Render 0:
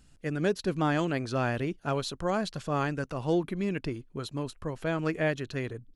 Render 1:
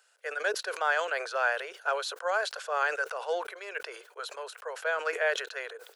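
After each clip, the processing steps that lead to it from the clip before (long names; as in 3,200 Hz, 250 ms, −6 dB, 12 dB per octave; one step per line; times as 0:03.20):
Butterworth high-pass 450 Hz 72 dB per octave
parametric band 1,500 Hz +10.5 dB 0.3 octaves
level that may fall only so fast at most 83 dB per second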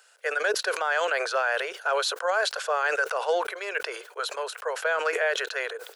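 brickwall limiter −24 dBFS, peak gain reduction 9 dB
level +8 dB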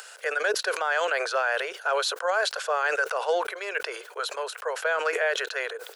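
upward compression, threshold −33 dBFS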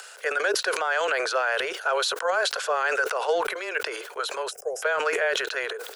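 frequency shifter −14 Hz
transient designer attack +2 dB, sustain +7 dB
gain on a spectral selection 0:04.51–0:04.82, 810–4,900 Hz −25 dB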